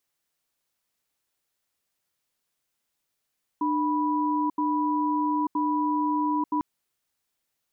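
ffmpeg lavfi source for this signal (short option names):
-f lavfi -i "aevalsrc='0.0562*(sin(2*PI*300*t)+sin(2*PI*983*t))*clip(min(mod(t,0.97),0.89-mod(t,0.97))/0.005,0,1)':d=3:s=44100"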